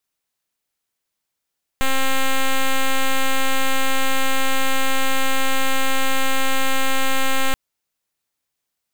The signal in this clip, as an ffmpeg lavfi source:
ffmpeg -f lavfi -i "aevalsrc='0.158*(2*lt(mod(266*t,1),0.05)-1)':duration=5.73:sample_rate=44100" out.wav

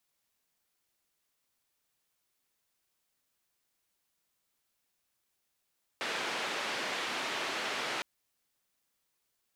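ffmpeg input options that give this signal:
ffmpeg -f lavfi -i "anoisesrc=color=white:duration=2.01:sample_rate=44100:seed=1,highpass=frequency=280,lowpass=frequency=2900,volume=-21.8dB" out.wav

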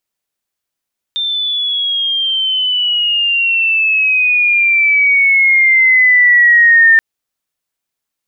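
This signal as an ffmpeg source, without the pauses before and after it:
ffmpeg -f lavfi -i "aevalsrc='pow(10,(-14.5+10.5*t/5.83)/20)*sin(2*PI*3600*5.83/log(1800/3600)*(exp(log(1800/3600)*t/5.83)-1))':duration=5.83:sample_rate=44100" out.wav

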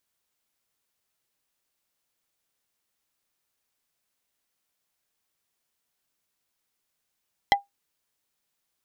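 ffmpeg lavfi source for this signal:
ffmpeg -f lavfi -i "aevalsrc='0.266*pow(10,-3*t/0.15)*sin(2*PI*803*t)+0.188*pow(10,-3*t/0.05)*sin(2*PI*2007.5*t)+0.133*pow(10,-3*t/0.028)*sin(2*PI*3212*t)+0.0944*pow(10,-3*t/0.022)*sin(2*PI*4015*t)+0.0668*pow(10,-3*t/0.016)*sin(2*PI*5219.5*t)':duration=0.45:sample_rate=44100" out.wav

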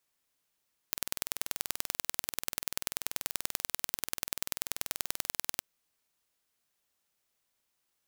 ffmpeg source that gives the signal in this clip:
ffmpeg -f lavfi -i "aevalsrc='0.75*eq(mod(n,2141),0)*(0.5+0.5*eq(mod(n,4282),0))':duration=4.67:sample_rate=44100" out.wav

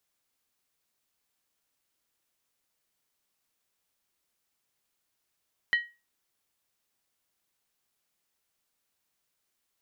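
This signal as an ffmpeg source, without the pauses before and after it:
ffmpeg -f lavfi -i "aevalsrc='0.126*pow(10,-3*t/0.28)*sin(2*PI*1900*t)+0.0335*pow(10,-3*t/0.222)*sin(2*PI*3028.6*t)+0.00891*pow(10,-3*t/0.192)*sin(2*PI*4058.4*t)+0.00237*pow(10,-3*t/0.185)*sin(2*PI*4362.4*t)+0.000631*pow(10,-3*t/0.172)*sin(2*PI*5040.7*t)':duration=0.63:sample_rate=44100" out.wav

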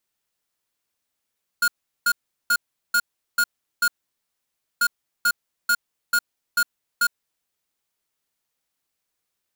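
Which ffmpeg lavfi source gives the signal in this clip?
ffmpeg -f lavfi -i "aevalsrc='0.119*(2*lt(mod(1430*t,1),0.5)-1)*clip(min(mod(mod(t,3.19),0.44),0.06-mod(mod(t,3.19),0.44))/0.005,0,1)*lt(mod(t,3.19),2.64)':duration=6.38:sample_rate=44100" out.wav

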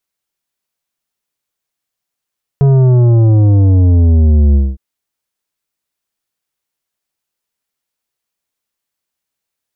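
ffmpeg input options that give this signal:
ffmpeg -f lavfi -i "aevalsrc='0.473*clip((2.16-t)/0.22,0,1)*tanh(3.16*sin(2*PI*140*2.16/log(65/140)*(exp(log(65/140)*t/2.16)-1)))/tanh(3.16)':duration=2.16:sample_rate=44100" out.wav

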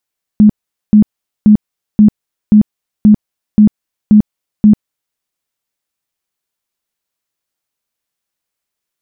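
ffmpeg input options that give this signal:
ffmpeg -f lavfi -i "aevalsrc='0.841*sin(2*PI*211*mod(t,0.53))*lt(mod(t,0.53),20/211)':duration=4.77:sample_rate=44100" out.wav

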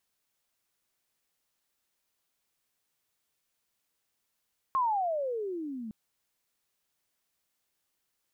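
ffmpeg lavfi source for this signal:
ffmpeg -f lavfi -i "aevalsrc='pow(10,(-23.5-13*t/1.16)/20)*sin(2*PI*1090*1.16/(-28.5*log(2)/12)*(exp(-28.5*log(2)/12*t/1.16)-1))':duration=1.16:sample_rate=44100" out.wav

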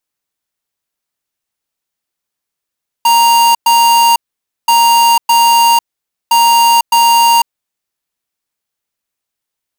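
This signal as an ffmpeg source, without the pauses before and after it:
ffmpeg -f lavfi -i "aevalsrc='0.398*(2*lt(mod(934*t,1),0.5)-1)*clip(min(mod(mod(t,1.63),0.61),0.5-mod(mod(t,1.63),0.61))/0.005,0,1)*lt(mod(t,1.63),1.22)':duration=4.89:sample_rate=44100" out.wav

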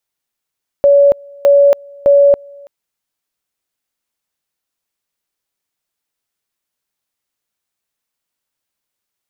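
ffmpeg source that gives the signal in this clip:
ffmpeg -f lavfi -i "aevalsrc='pow(10,(-4.5-28.5*gte(mod(t,0.61),0.28))/20)*sin(2*PI*566*t)':duration=1.83:sample_rate=44100" out.wav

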